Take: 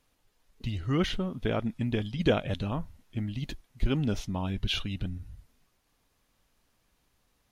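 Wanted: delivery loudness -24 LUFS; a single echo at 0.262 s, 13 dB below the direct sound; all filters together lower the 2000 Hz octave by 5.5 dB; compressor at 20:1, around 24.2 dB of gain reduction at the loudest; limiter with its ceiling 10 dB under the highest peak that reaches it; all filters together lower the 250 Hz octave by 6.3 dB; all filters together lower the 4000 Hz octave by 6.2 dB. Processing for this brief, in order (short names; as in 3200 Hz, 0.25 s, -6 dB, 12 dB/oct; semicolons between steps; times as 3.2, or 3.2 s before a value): bell 250 Hz -9 dB; bell 2000 Hz -5.5 dB; bell 4000 Hz -6 dB; compressor 20:1, threshold -44 dBFS; limiter -43 dBFS; echo 0.262 s -13 dB; gain +29 dB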